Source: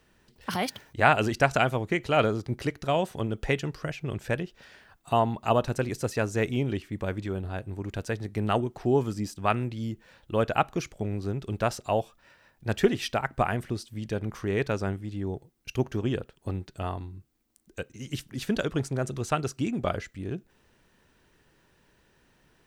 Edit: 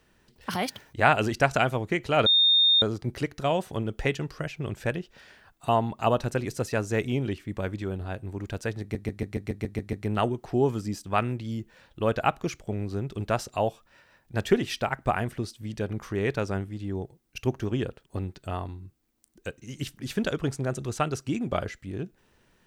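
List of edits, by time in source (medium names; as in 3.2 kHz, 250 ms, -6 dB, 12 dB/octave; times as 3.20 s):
2.26 s: add tone 3.66 kHz -16.5 dBFS 0.56 s
8.25 s: stutter 0.14 s, 9 plays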